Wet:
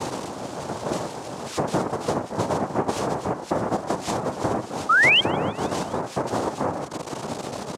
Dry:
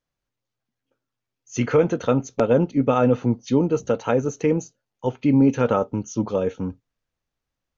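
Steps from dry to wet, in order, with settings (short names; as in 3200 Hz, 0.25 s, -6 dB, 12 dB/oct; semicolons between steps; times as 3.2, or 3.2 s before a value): zero-crossing step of -23.5 dBFS; tilt shelf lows +9.5 dB, about 1300 Hz; notches 50/100/150/200/250/300/350 Hz; compressor 12:1, threshold -22 dBFS, peak gain reduction 19.5 dB; noise vocoder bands 2; painted sound rise, 4.89–5.21, 1200–3300 Hz -16 dBFS; frequency-shifting echo 0.158 s, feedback 64%, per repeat +150 Hz, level -24 dB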